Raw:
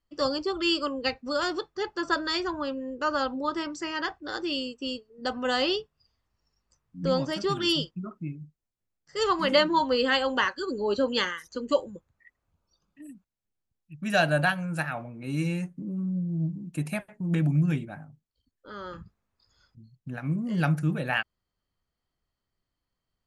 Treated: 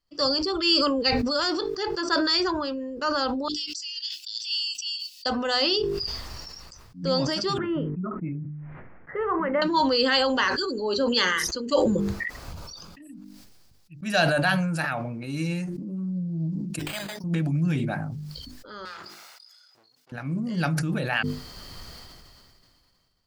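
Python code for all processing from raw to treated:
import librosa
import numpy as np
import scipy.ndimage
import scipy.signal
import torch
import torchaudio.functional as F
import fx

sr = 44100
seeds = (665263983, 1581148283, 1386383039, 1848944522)

y = fx.chain(x, sr, fx.cheby1_highpass(hz=2800.0, order=5),
    fx.doppler_dist(depth_ms=0.19), at=(3.48, 5.26))
y = fx.chain(y, sr, fx.steep_lowpass(hz=2100.0, slope=48),
    fx.band_squash(depth_pct=70), at=(7.58, 9.62))
y = fx.chain(y, sr, fx.highpass(hz=970.0, slope=6),
    fx.resample_bad(factor=8, down='none', up='hold'), at=(16.79, 17.24))
y = fx.chain(y, sr, fx.lower_of_two(delay_ms=1.4),
    fx.highpass(hz=1000.0, slope=12), at=(18.85, 20.12))
y = fx.peak_eq(y, sr, hz=4800.0, db=10.0, octaves=0.52)
y = fx.hum_notches(y, sr, base_hz=50, count=9)
y = fx.sustainer(y, sr, db_per_s=24.0)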